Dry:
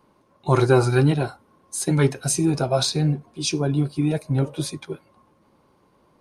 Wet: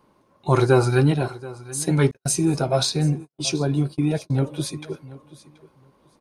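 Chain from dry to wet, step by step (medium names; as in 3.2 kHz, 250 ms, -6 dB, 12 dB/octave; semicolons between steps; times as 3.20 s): feedback delay 730 ms, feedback 17%, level -19 dB; 2.11–4.37 s: gate -30 dBFS, range -49 dB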